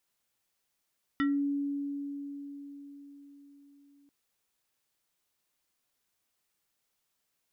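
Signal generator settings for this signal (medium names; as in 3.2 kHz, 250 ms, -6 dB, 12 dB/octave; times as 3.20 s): FM tone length 2.89 s, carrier 283 Hz, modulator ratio 5.77, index 1.1, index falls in 0.25 s exponential, decay 4.82 s, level -24 dB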